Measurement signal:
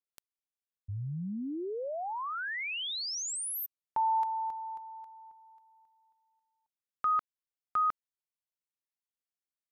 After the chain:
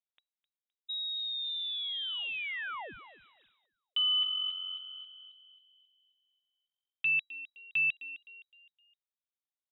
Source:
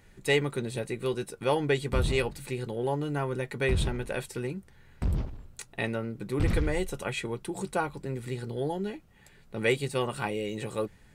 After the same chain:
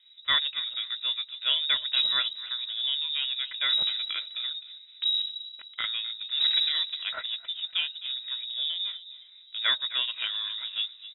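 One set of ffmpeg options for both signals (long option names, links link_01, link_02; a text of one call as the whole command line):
ffmpeg -i in.wav -filter_complex "[0:a]asplit=5[link_01][link_02][link_03][link_04][link_05];[link_02]adelay=258,afreqshift=-45,volume=-14dB[link_06];[link_03]adelay=516,afreqshift=-90,volume=-21.3dB[link_07];[link_04]adelay=774,afreqshift=-135,volume=-28.7dB[link_08];[link_05]adelay=1032,afreqshift=-180,volume=-36dB[link_09];[link_01][link_06][link_07][link_08][link_09]amix=inputs=5:normalize=0,adynamicsmooth=sensitivity=6.5:basefreq=1100,lowpass=frequency=3300:width_type=q:width=0.5098,lowpass=frequency=3300:width_type=q:width=0.6013,lowpass=frequency=3300:width_type=q:width=0.9,lowpass=frequency=3300:width_type=q:width=2.563,afreqshift=-3900" out.wav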